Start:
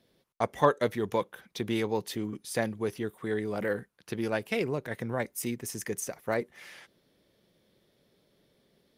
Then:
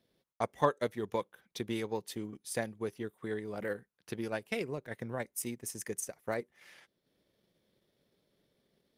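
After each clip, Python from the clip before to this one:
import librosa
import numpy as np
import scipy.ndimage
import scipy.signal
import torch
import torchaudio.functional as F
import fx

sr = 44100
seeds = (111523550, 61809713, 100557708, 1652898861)

y = fx.dynamic_eq(x, sr, hz=8900.0, q=1.1, threshold_db=-53.0, ratio=4.0, max_db=5)
y = fx.transient(y, sr, attack_db=3, sustain_db=-6)
y = F.gain(torch.from_numpy(y), -7.0).numpy()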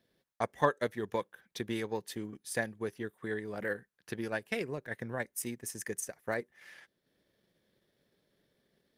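y = fx.peak_eq(x, sr, hz=1700.0, db=7.5, octaves=0.31)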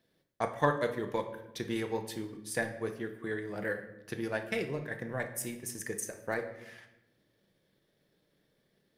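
y = fx.room_shoebox(x, sr, seeds[0], volume_m3=310.0, walls='mixed', distance_m=0.6)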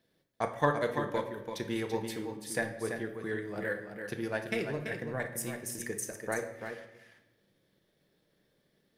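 y = x + 10.0 ** (-7.5 / 20.0) * np.pad(x, (int(336 * sr / 1000.0), 0))[:len(x)]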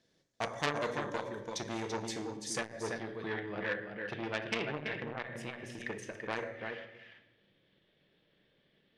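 y = fx.filter_sweep_lowpass(x, sr, from_hz=6500.0, to_hz=3000.0, start_s=2.83, end_s=3.4, q=2.8)
y = fx.transformer_sat(y, sr, knee_hz=3600.0)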